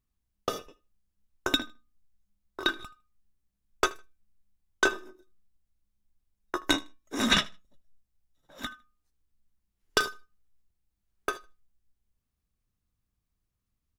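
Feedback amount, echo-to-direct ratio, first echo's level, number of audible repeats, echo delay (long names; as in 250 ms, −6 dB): repeats not evenly spaced, −22.0 dB, −22.0 dB, 1, 78 ms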